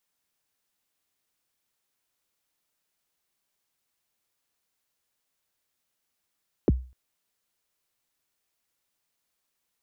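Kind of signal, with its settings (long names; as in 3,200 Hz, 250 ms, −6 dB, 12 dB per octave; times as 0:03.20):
synth kick length 0.25 s, from 500 Hz, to 63 Hz, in 28 ms, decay 0.36 s, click off, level −13.5 dB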